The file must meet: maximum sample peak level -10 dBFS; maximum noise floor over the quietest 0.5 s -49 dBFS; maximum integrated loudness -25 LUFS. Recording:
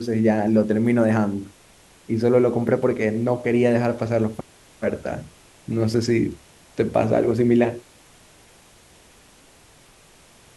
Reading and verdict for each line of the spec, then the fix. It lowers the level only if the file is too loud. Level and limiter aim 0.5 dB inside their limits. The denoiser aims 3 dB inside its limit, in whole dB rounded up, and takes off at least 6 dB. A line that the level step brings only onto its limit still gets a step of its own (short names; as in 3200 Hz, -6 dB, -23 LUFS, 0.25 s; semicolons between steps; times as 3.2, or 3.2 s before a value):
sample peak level -5.0 dBFS: fail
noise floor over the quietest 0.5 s -52 dBFS: OK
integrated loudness -21.5 LUFS: fail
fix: gain -4 dB; limiter -10.5 dBFS